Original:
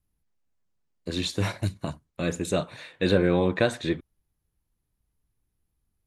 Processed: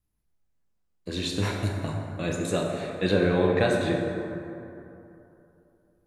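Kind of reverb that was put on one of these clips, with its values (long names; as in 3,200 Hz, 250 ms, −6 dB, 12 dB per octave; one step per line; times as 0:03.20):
dense smooth reverb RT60 3 s, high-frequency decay 0.4×, DRR −0.5 dB
level −2.5 dB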